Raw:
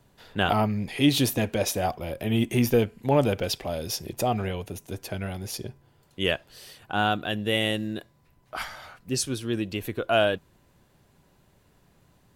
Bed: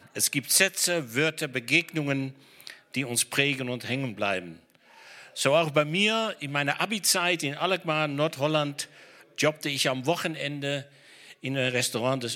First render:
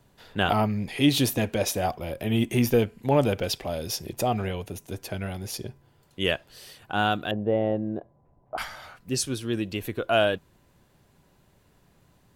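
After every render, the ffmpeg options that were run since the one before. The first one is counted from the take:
-filter_complex "[0:a]asettb=1/sr,asplit=3[s0][s1][s2];[s0]atrim=end=7.314[s3];[s1]atrim=start=7.31:end=8.58,asetpts=PTS-STARTPTS,afade=t=in:d=0.004:c=qsin,afade=t=out:st=1.266:d=0.004:c=qsin,lowpass=f=730:t=q:w=2.1[s4];[s2]atrim=start=8.576[s5];[s3][s4]acrossfade=d=0.004:c1=hsin:c2=qsin[s6];[s6][s5]acrossfade=d=0.004:c1=qsin:c2=hsin"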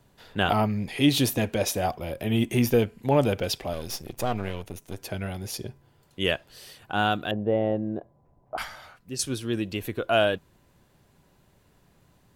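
-filter_complex "[0:a]asettb=1/sr,asplit=3[s0][s1][s2];[s0]atrim=end=3.734[s3];[s1]atrim=start=3.73:end=4.99,asetpts=PTS-STARTPTS,afade=t=in:d=0.004:c=qsin,afade=t=out:st=1.256:d=0.004:c=qsin,aeval=exprs='if(lt(val(0),0),0.251*val(0),val(0))':c=same[s4];[s2]atrim=start=4.986[s5];[s3][s4]acrossfade=d=0.004:c1=hsin:c2=qsin[s6];[s6][s5]acrossfade=d=0.004:c1=qsin:c2=hsin,asplit=2[s7][s8];[s7]atrim=end=9.19,asetpts=PTS-STARTPTS,afade=t=out:st=8.55:d=0.64:silence=0.375837[s9];[s8]atrim=start=9.19,asetpts=PTS-STARTPTS,afade=t=in:d=0.004:c=hsin:silence=0.375837[s10];[s9][s10]concat=n=2:v=0:a=1"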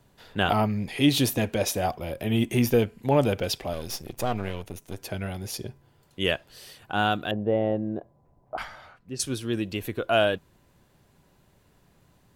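-filter_complex "[0:a]asettb=1/sr,asplit=3[s0][s1][s2];[s0]atrim=end=8.544[s3];[s1]atrim=start=8.54:end=9.2,asetpts=PTS-STARTPTS,afade=t=in:d=0.004:c=qsin,afade=t=out:st=0.656:d=0.004:c=qsin,lowpass=f=2500:p=1[s4];[s2]atrim=start=9.196[s5];[s3][s4]acrossfade=d=0.004:c1=hsin:c2=qsin[s6];[s6][s5]acrossfade=d=0.004:c1=qsin:c2=hsin"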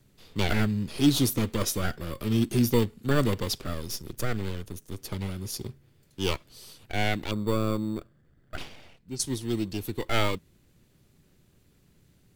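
-filter_complex "[0:a]acrossover=split=320|490|3000[s0][s1][s2][s3];[s1]acrusher=samples=11:mix=1:aa=0.000001[s4];[s2]aeval=exprs='abs(val(0))':c=same[s5];[s0][s4][s5][s3]amix=inputs=4:normalize=0"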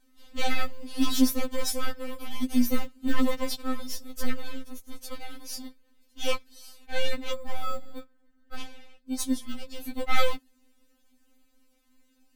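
-af "aeval=exprs='0.316*(cos(1*acos(clip(val(0)/0.316,-1,1)))-cos(1*PI/2))+0.0316*(cos(6*acos(clip(val(0)/0.316,-1,1)))-cos(6*PI/2))':c=same,afftfilt=real='re*3.46*eq(mod(b,12),0)':imag='im*3.46*eq(mod(b,12),0)':win_size=2048:overlap=0.75"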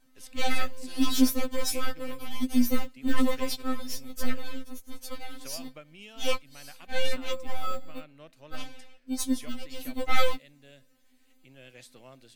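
-filter_complex "[1:a]volume=0.0596[s0];[0:a][s0]amix=inputs=2:normalize=0"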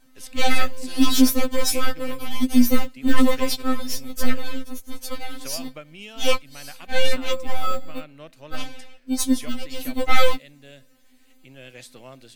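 -af "volume=2.37,alimiter=limit=0.708:level=0:latency=1"

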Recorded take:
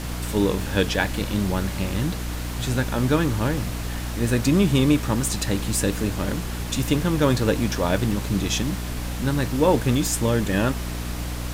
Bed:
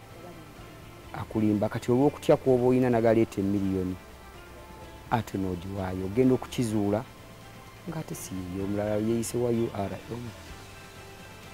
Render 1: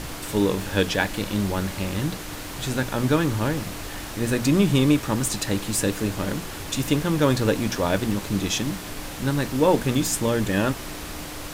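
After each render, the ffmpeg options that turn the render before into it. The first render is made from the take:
-af "bandreject=f=60:t=h:w=6,bandreject=f=120:t=h:w=6,bandreject=f=180:t=h:w=6,bandreject=f=240:t=h:w=6"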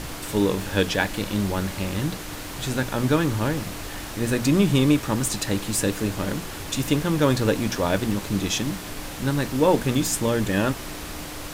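-af anull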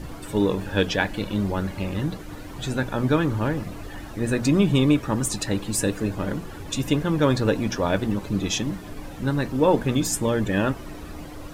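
-af "afftdn=nr=13:nf=-35"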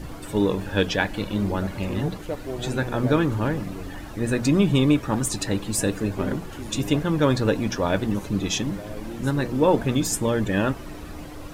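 -filter_complex "[1:a]volume=0.316[s0];[0:a][s0]amix=inputs=2:normalize=0"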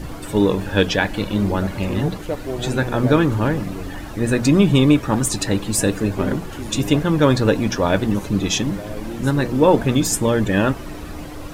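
-af "volume=1.78,alimiter=limit=0.794:level=0:latency=1"

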